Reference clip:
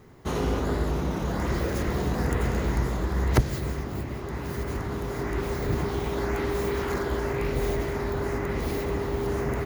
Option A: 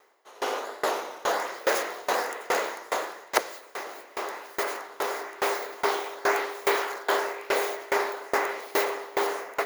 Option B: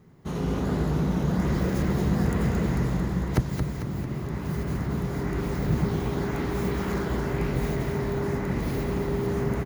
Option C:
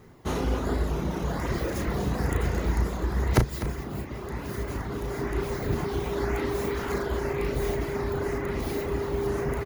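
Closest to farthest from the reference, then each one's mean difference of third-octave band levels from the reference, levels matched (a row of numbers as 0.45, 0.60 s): C, B, A; 1.5, 4.0, 12.0 dB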